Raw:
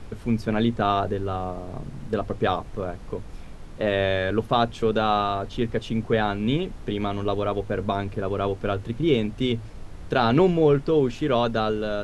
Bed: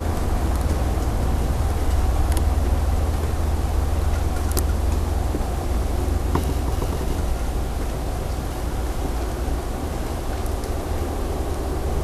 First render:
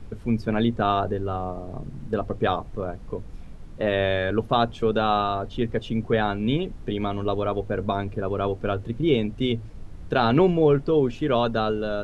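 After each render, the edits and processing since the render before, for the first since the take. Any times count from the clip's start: denoiser 7 dB, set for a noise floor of -40 dBFS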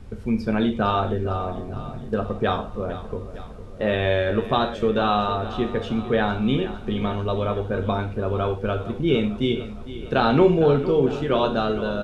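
feedback echo 0.456 s, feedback 56%, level -14 dB; non-linear reverb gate 0.14 s falling, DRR 4.5 dB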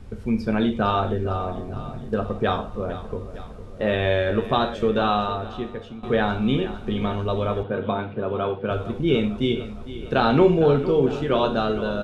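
5.05–6.03 fade out, to -16 dB; 7.63–8.71 elliptic band-pass 120–3500 Hz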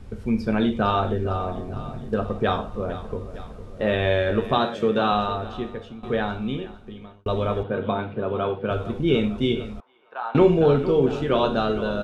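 4.58–5.12 HPF 110 Hz 24 dB/oct; 5.68–7.26 fade out linear; 9.8–10.35 ladder band-pass 1100 Hz, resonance 50%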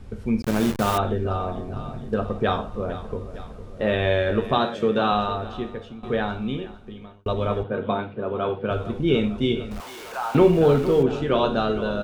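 0.42–0.98 level-crossing sampler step -24 dBFS; 7.33–8.49 three-band expander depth 70%; 9.71–11.03 zero-crossing step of -33 dBFS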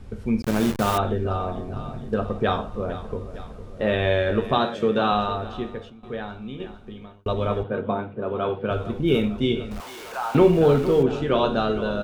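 5.9–6.6 gain -7.5 dB; 7.81–8.22 LPF 1400 Hz 6 dB/oct; 8.91–9.39 median filter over 5 samples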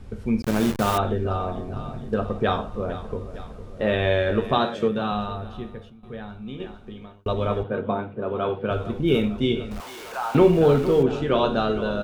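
4.88–6.47 spectral gain 230–8700 Hz -6 dB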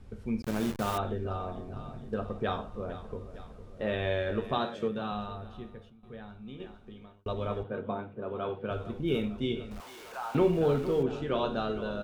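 gain -9 dB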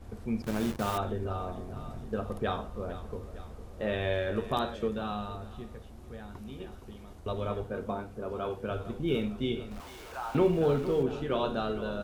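add bed -27 dB

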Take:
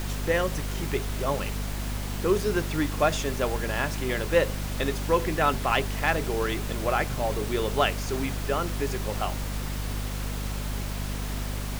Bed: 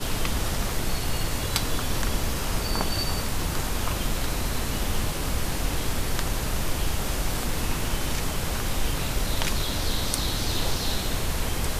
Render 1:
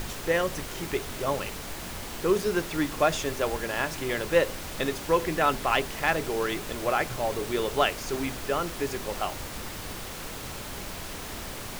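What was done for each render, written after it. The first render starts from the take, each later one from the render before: notches 50/100/150/200/250 Hz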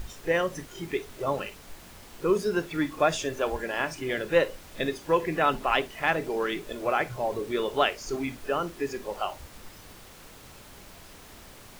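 noise print and reduce 11 dB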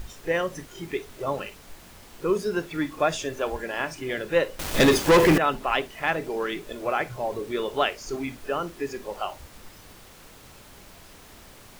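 4.59–5.38 sample leveller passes 5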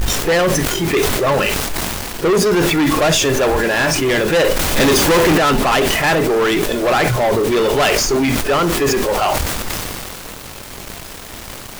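sample leveller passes 5; sustainer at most 21 dB/s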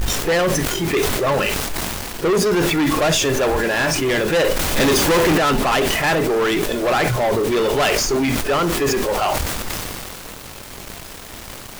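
gain -3 dB

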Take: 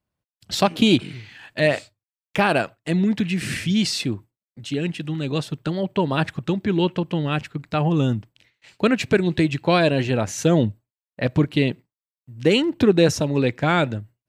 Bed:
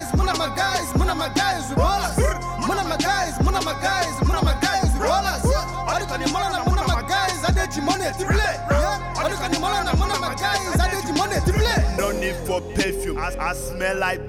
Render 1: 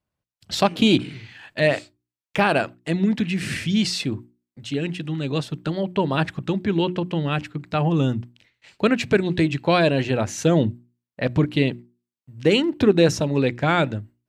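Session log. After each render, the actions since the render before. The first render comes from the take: high shelf 9600 Hz -6 dB; notches 60/120/180/240/300/360 Hz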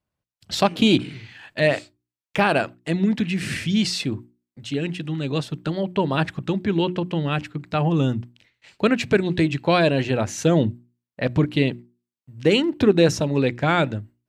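nothing audible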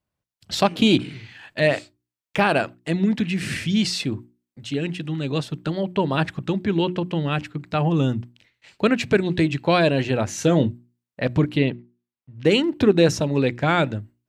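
10.29–10.7 doubler 22 ms -11 dB; 11.57–12.45 LPF 3500 Hz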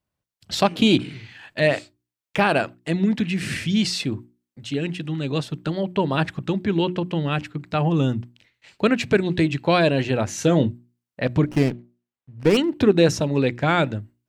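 11.47–12.57 running maximum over 9 samples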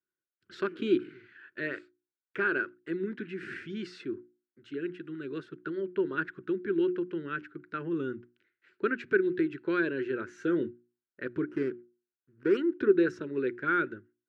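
double band-pass 740 Hz, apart 2 oct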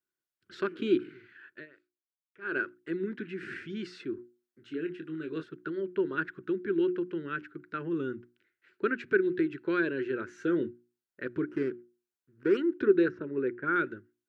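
1.49–2.58 dip -22 dB, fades 0.17 s; 4.16–5.44 doubler 25 ms -8 dB; 13.08–13.76 LPF 1800 Hz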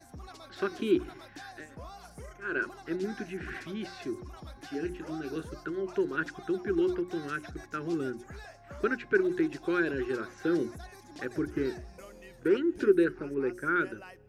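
add bed -26.5 dB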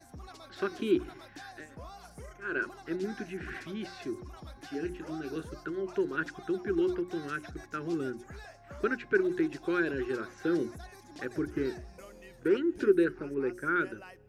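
gain -1 dB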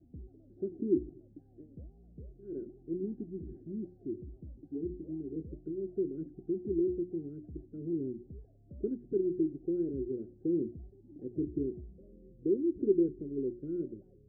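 inverse Chebyshev low-pass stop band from 1000 Hz, stop band 50 dB

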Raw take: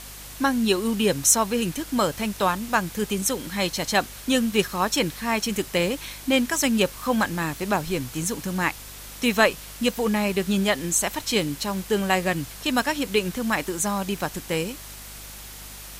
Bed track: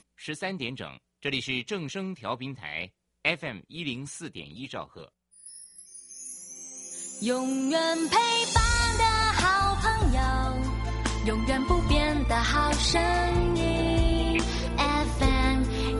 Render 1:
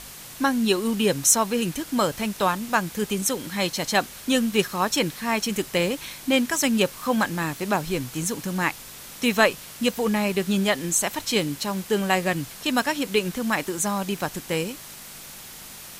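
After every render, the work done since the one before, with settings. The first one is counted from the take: de-hum 50 Hz, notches 2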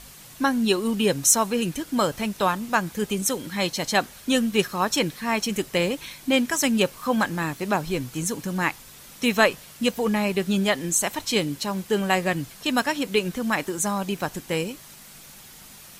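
denoiser 6 dB, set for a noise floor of -42 dBFS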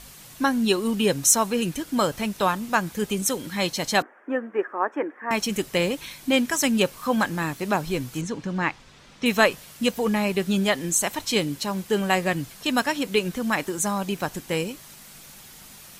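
4.02–5.31 elliptic band-pass 300–1800 Hz; 8.21–9.26 air absorption 130 m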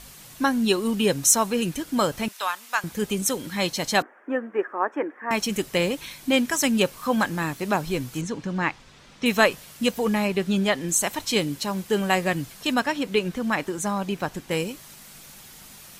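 2.28–2.84 HPF 1100 Hz; 10.27–10.89 high shelf 7600 Hz -8.5 dB; 12.74–14.51 high shelf 5700 Hz -8.5 dB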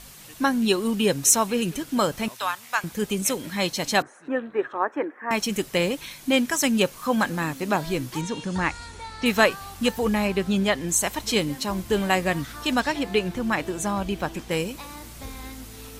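add bed track -15.5 dB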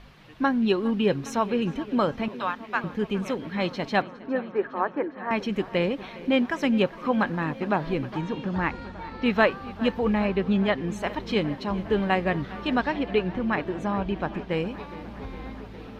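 air absorption 330 m; darkening echo 0.41 s, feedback 82%, low-pass 4700 Hz, level -18 dB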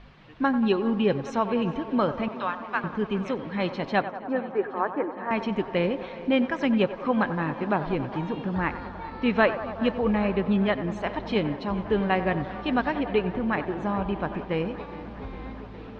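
air absorption 130 m; narrowing echo 93 ms, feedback 82%, band-pass 830 Hz, level -11 dB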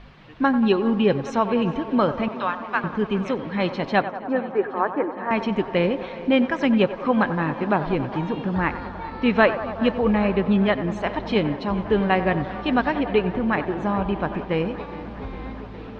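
gain +4 dB

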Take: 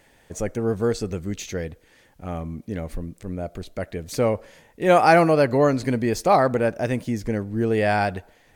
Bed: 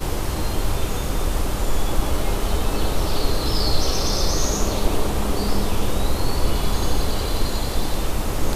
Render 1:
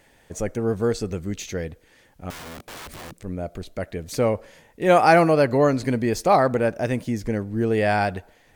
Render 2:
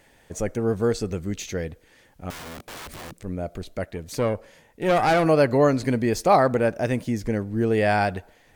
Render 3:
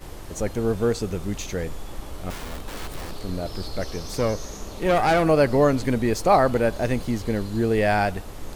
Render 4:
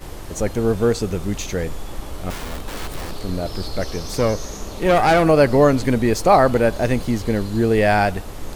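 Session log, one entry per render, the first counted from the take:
2.3–3.16 wrapped overs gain 33.5 dB
3.85–5.26 tube stage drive 14 dB, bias 0.55
add bed -14.5 dB
gain +4.5 dB; limiter -3 dBFS, peak gain reduction 1 dB

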